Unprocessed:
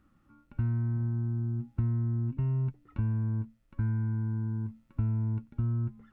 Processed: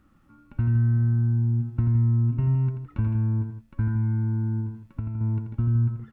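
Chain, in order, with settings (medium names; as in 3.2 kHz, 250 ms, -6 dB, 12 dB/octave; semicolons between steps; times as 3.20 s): 4.60–5.21 s: compression 6:1, threshold -33 dBFS, peak gain reduction 8.5 dB; loudspeakers at several distances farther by 29 m -7 dB, 56 m -11 dB; trim +5 dB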